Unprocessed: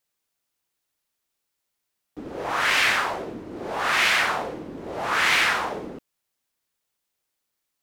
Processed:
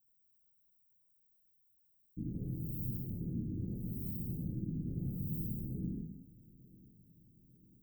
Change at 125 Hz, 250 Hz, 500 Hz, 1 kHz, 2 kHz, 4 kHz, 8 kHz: +7.5 dB, −2.0 dB, −22.5 dB, below −40 dB, below −40 dB, below −40 dB, below −35 dB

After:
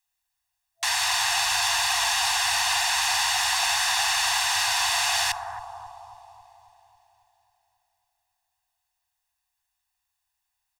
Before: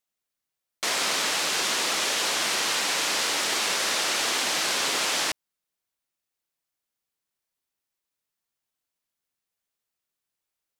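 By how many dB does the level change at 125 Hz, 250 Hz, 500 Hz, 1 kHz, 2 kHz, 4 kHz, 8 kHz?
+1.5 dB, below −35 dB, −6.0 dB, +4.5 dB, +2.5 dB, +1.5 dB, +1.5 dB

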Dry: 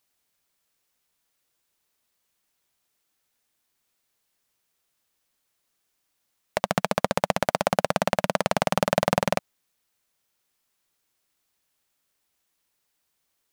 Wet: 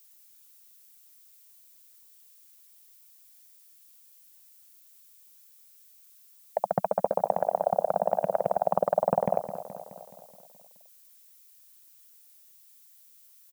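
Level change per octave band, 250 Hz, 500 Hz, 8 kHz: −9.0 dB, 0.0 dB, below −10 dB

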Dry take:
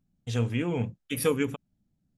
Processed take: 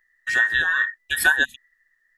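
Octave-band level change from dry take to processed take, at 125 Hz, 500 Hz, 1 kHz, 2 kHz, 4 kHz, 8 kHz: below −15 dB, −11.5 dB, +7.5 dB, +23.0 dB, +11.5 dB, +7.0 dB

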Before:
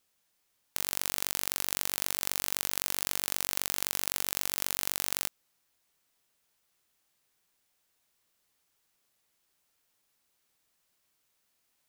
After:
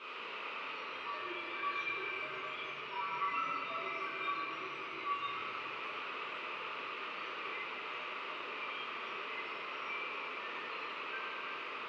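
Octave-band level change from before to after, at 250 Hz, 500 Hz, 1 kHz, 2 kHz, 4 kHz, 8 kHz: −1.0 dB, +2.5 dB, +7.5 dB, +4.0 dB, −6.5 dB, below −35 dB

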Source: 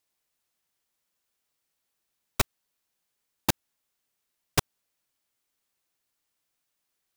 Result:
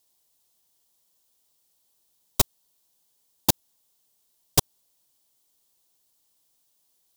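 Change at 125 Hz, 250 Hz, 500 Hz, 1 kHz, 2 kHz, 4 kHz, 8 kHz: +2.5, +2.5, +2.5, +1.5, −4.5, +4.5, +7.0 decibels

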